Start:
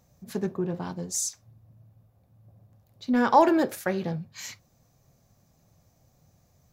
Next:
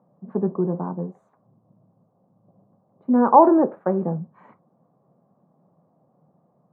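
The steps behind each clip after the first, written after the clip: elliptic band-pass 170–1100 Hz, stop band 60 dB; trim +6.5 dB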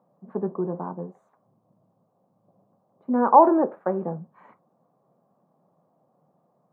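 bass shelf 280 Hz -10 dB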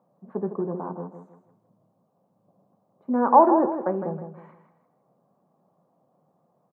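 feedback delay 159 ms, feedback 33%, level -9 dB; trim -1 dB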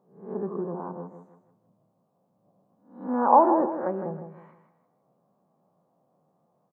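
reverse spectral sustain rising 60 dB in 0.47 s; trim -4 dB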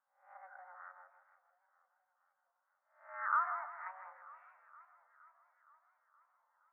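band-pass sweep 1.5 kHz -> 540 Hz, 5.90–6.52 s; frequency shift +370 Hz; modulated delay 469 ms, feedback 63%, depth 108 cents, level -20 dB; trim -6 dB

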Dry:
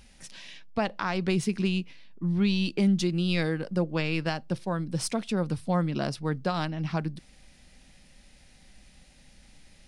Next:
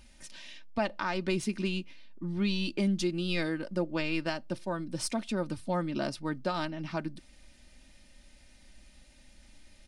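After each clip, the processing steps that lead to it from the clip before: comb 3.3 ms, depth 53%; trim -3.5 dB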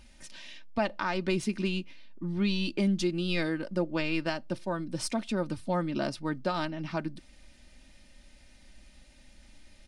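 treble shelf 7.9 kHz -4.5 dB; trim +1.5 dB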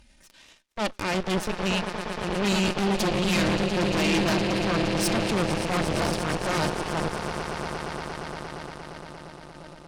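echo with a slow build-up 116 ms, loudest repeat 8, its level -12.5 dB; Chebyshev shaper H 8 -9 dB, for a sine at -13.5 dBFS; transient shaper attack -8 dB, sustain -1 dB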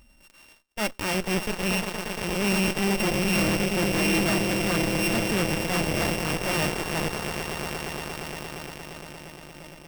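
sorted samples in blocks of 16 samples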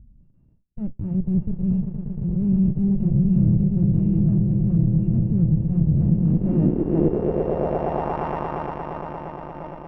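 low-pass sweep 140 Hz -> 960 Hz, 5.92–8.25 s; trim +8 dB

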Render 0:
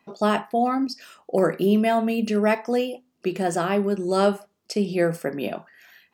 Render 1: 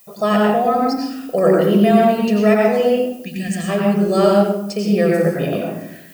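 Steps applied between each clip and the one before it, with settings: time-frequency box 3.23–3.69 s, 280–1600 Hz -18 dB; added noise violet -50 dBFS; reverberation RT60 0.85 s, pre-delay 87 ms, DRR -1.5 dB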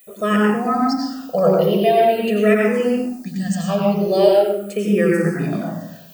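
barber-pole phaser -0.43 Hz; trim +2 dB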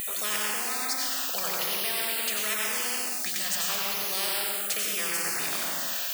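high-pass 1.5 kHz 12 dB/octave; spectrum-flattening compressor 4:1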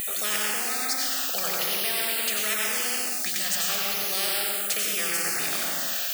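band-stop 1 kHz, Q 5.7; trim +2.5 dB

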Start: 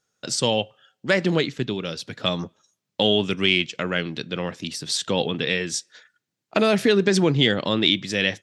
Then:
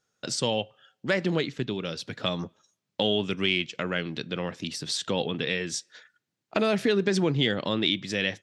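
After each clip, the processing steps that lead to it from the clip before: treble shelf 7.9 kHz -6.5 dB; in parallel at +1.5 dB: compression, threshold -29 dBFS, peak gain reduction 14.5 dB; on the sum: trim -7.5 dB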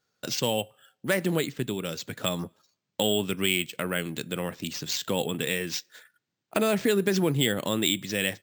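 careless resampling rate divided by 4×, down none, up hold

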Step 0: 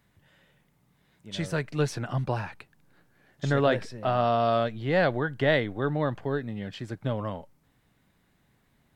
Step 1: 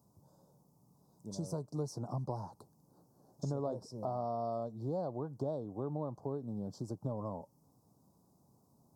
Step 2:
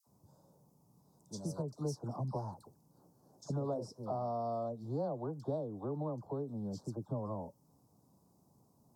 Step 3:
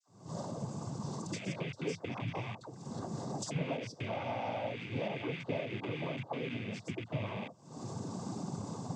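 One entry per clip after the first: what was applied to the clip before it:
high-pass 99 Hz; compression 3:1, threshold -38 dBFS, peak gain reduction 15 dB; elliptic band-stop 1–5.2 kHz, stop band 60 dB; trim +1 dB
phase dispersion lows, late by 70 ms, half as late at 1.1 kHz
rattle on loud lows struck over -48 dBFS, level -34 dBFS; recorder AGC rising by 75 dB/s; noise-vocoded speech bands 16

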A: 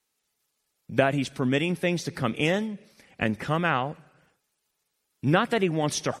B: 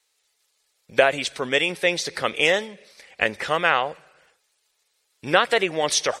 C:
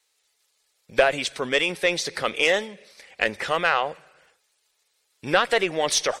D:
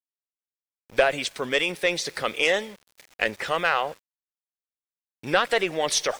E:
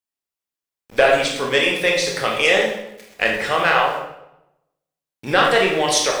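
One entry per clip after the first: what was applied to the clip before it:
ten-band graphic EQ 125 Hz -10 dB, 250 Hz -8 dB, 500 Hz +8 dB, 1 kHz +3 dB, 2 kHz +7 dB, 4 kHz +9 dB, 8 kHz +8 dB; trim -1 dB
single-diode clipper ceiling -5.5 dBFS
small samples zeroed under -42.5 dBFS; trim -1.5 dB
reverberation RT60 0.85 s, pre-delay 18 ms, DRR -1 dB; trim +3.5 dB

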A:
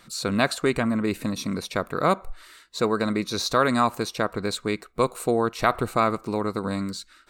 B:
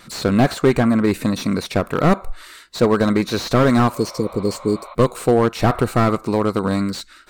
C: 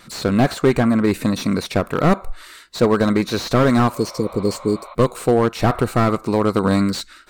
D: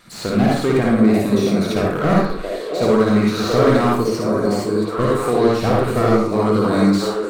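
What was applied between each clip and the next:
spectral replace 3.97–4.92 s, 530–4200 Hz after; wow and flutter 24 cents; slew-rate limiter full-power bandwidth 76 Hz; trim +8 dB
level rider; trim -1 dB
repeats whose band climbs or falls 680 ms, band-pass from 470 Hz, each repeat 1.4 oct, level -1.5 dB; reverberation RT60 0.55 s, pre-delay 50 ms, DRR -3.5 dB; trim -5 dB

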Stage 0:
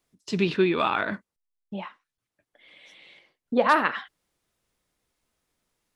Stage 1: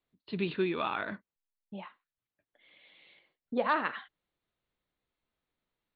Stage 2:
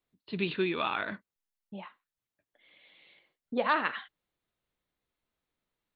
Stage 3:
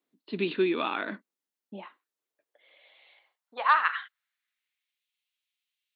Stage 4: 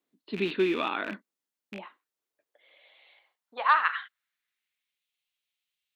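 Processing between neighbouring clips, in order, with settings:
steep low-pass 4.4 kHz 96 dB/octave; trim -8.5 dB
dynamic bell 3.1 kHz, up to +5 dB, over -49 dBFS, Q 0.74
high-pass sweep 270 Hz -> 2.8 kHz, 1.72–5.04 s
rattle on loud lows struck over -43 dBFS, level -28 dBFS

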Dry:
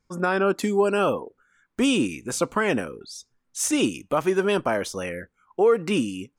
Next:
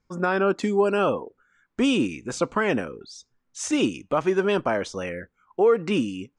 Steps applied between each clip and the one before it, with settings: low-pass 7.9 kHz 24 dB/octave; treble shelf 4.8 kHz -5.5 dB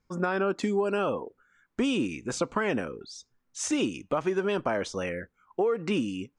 compression, threshold -22 dBFS, peak gain reduction 7.5 dB; trim -1 dB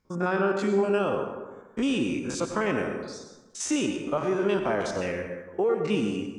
spectrogram pixelated in time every 50 ms; reverberation RT60 1.2 s, pre-delay 82 ms, DRR 5 dB; trim +2 dB

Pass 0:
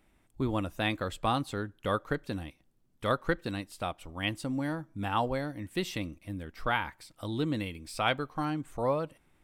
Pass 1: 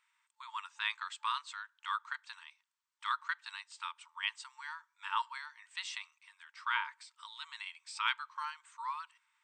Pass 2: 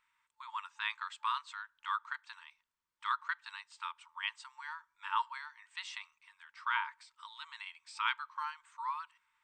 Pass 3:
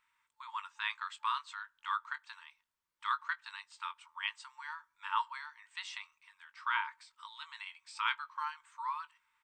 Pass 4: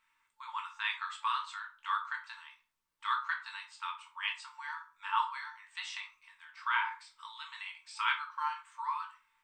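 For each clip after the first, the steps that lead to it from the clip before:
FFT band-pass 880–8700 Hz; trim -2 dB
tilt EQ -2.5 dB/octave; trim +1.5 dB
doubling 20 ms -12.5 dB
simulated room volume 250 m³, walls furnished, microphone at 1.6 m

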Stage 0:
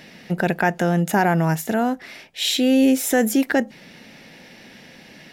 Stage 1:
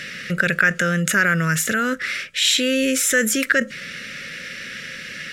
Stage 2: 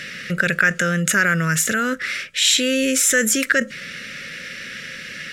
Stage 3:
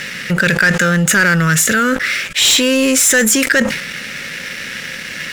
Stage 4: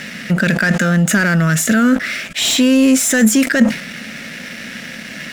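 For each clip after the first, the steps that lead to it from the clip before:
FFT filter 140 Hz 0 dB, 330 Hz -8 dB, 560 Hz +1 dB, 800 Hz -29 dB, 1.3 kHz +11 dB, 4.7 kHz +4 dB, 7.7 kHz +9 dB, 15 kHz -4 dB; in parallel at -2 dB: compressor with a negative ratio -27 dBFS, ratio -1; on the sum: trim -2.5 dB
dynamic bell 7.2 kHz, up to +4 dB, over -34 dBFS, Q 1.2
waveshaping leveller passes 3; decay stretcher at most 66 dB/s; trim -3.5 dB
small resonant body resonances 230/660 Hz, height 12 dB, ringing for 30 ms; trim -5 dB

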